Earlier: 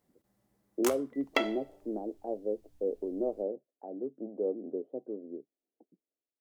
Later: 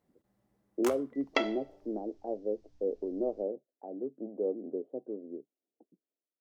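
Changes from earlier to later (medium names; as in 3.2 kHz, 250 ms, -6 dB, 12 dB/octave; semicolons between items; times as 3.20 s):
second sound: add resonant low-pass 5.6 kHz, resonance Q 2.6; master: add treble shelf 3.7 kHz -8.5 dB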